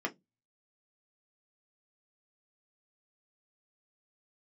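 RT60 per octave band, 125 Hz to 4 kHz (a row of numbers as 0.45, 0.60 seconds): 0.40, 0.30, 0.20, 0.10, 0.10, 0.15 seconds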